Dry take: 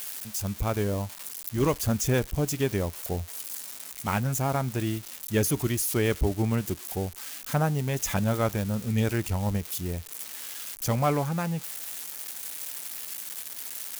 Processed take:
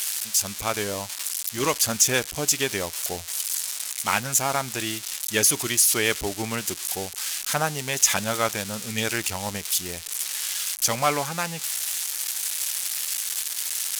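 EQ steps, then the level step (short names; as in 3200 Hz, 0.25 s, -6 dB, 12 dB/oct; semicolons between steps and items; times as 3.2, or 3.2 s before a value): air absorption 54 m; tilt +4.5 dB/oct; +5.0 dB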